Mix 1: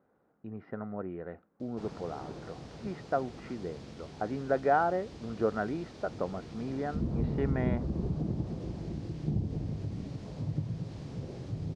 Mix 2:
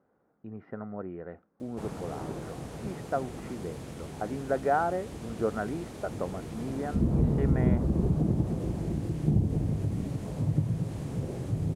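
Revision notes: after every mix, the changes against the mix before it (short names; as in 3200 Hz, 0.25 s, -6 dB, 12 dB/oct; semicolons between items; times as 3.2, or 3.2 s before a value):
background +6.5 dB; master: remove synth low-pass 4900 Hz, resonance Q 2.1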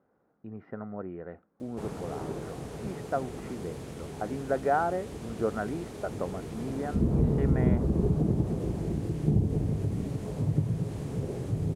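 background: add bell 420 Hz +6.5 dB 0.21 oct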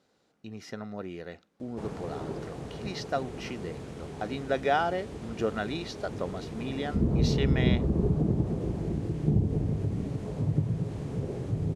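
speech: remove LPF 1500 Hz 24 dB/oct; master: add air absorption 50 m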